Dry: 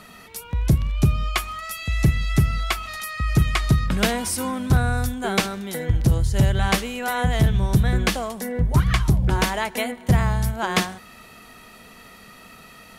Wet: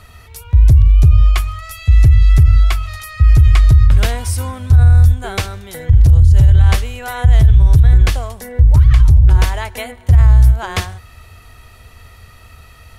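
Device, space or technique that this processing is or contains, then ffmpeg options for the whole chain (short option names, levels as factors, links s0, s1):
car stereo with a boomy subwoofer: -af "lowshelf=f=130:t=q:w=3:g=14,alimiter=limit=0.794:level=0:latency=1:release=26"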